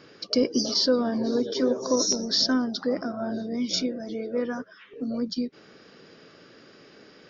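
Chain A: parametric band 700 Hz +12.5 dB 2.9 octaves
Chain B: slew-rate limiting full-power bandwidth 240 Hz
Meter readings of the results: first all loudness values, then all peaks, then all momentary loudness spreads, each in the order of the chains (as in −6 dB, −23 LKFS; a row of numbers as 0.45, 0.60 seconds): −19.0, −27.0 LKFS; −2.0, −11.5 dBFS; 11, 9 LU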